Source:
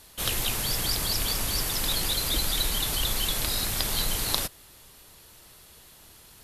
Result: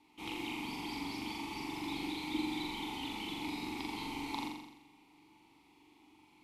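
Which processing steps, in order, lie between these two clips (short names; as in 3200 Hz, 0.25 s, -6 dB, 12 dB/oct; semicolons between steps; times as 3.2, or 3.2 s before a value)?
vowel filter u; flutter echo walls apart 7.3 m, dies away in 0.94 s; gain +4 dB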